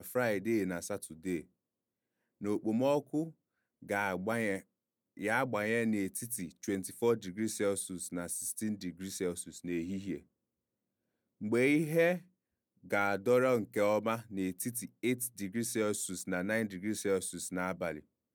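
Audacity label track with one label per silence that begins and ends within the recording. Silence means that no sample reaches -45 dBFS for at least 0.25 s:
1.410000	2.410000	silence
3.290000	3.830000	silence
4.600000	5.170000	silence
10.200000	11.410000	silence
12.190000	12.860000	silence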